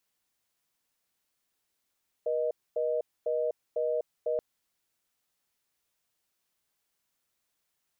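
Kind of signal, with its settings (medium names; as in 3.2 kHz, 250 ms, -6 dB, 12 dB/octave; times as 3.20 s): call progress tone reorder tone, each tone -29 dBFS 2.13 s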